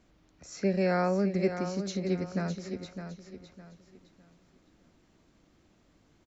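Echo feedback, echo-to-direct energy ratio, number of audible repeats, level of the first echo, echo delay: 31%, -8.5 dB, 3, -9.0 dB, 0.609 s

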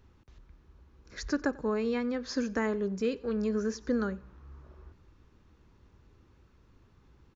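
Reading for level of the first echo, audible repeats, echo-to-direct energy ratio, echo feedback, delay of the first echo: -22.5 dB, 2, -22.0 dB, 37%, 92 ms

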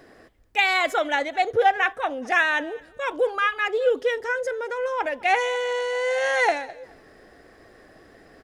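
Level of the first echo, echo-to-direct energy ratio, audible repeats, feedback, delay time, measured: -22.5 dB, -22.5 dB, 2, 24%, 0.213 s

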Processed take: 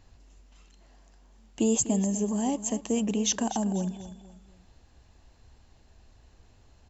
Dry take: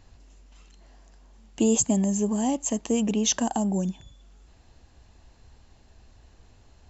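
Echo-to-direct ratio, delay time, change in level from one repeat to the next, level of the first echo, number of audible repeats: -13.5 dB, 0.246 s, -9.0 dB, -14.0 dB, 3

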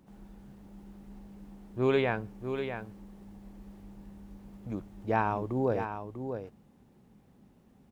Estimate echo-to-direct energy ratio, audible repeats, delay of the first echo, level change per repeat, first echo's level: -8.0 dB, 1, 0.645 s, no steady repeat, -8.0 dB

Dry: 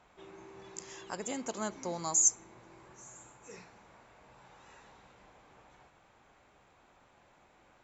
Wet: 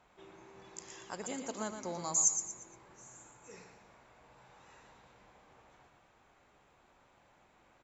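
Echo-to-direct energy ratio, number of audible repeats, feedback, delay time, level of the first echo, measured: -7.5 dB, 4, 37%, 0.117 s, -8.0 dB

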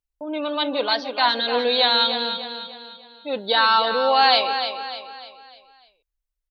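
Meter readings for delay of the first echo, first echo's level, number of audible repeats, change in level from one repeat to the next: 0.299 s, -8.5 dB, 4, -7.5 dB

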